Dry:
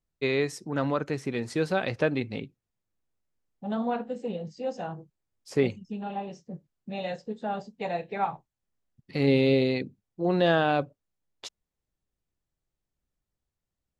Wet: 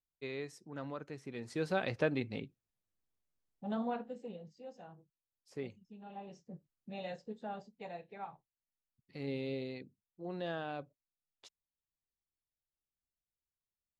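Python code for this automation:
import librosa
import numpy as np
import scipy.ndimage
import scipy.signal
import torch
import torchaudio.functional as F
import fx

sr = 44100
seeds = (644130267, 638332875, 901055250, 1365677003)

y = fx.gain(x, sr, db=fx.line((1.22, -15.5), (1.75, -6.5), (3.77, -6.5), (4.7, -18.0), (5.96, -18.0), (6.38, -9.5), (7.31, -9.5), (8.18, -17.0)))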